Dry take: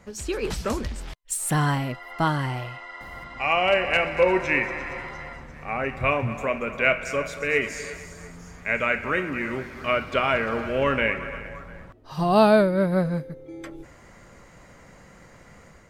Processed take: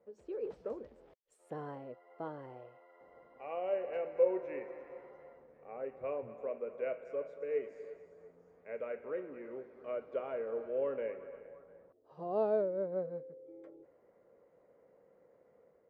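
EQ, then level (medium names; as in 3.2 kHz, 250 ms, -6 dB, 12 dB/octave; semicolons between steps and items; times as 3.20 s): band-pass filter 480 Hz, Q 4.1; -6.0 dB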